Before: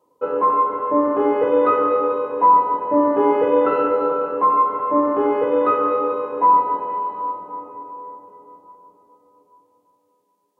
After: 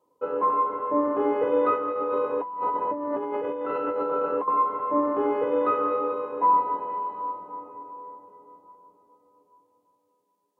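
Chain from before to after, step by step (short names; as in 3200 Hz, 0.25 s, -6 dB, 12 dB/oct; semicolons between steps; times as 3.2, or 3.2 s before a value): 1.74–4.48 negative-ratio compressor -22 dBFS, ratio -1; gain -6 dB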